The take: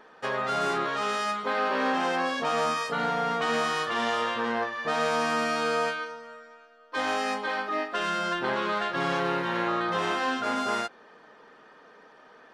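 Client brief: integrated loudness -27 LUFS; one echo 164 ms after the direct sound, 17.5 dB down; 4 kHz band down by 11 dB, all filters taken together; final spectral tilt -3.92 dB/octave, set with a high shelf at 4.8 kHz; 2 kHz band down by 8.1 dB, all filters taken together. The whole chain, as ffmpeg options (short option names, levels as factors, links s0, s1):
-af "equalizer=f=2000:t=o:g=-8.5,equalizer=f=4000:t=o:g=-8.5,highshelf=f=4800:g=-6.5,aecho=1:1:164:0.133,volume=1.5"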